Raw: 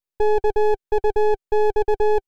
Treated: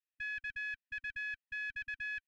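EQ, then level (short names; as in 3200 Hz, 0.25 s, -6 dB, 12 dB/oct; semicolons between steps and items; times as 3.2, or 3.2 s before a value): vowel filter e; brick-wall FIR band-stop 260–1100 Hz; +9.5 dB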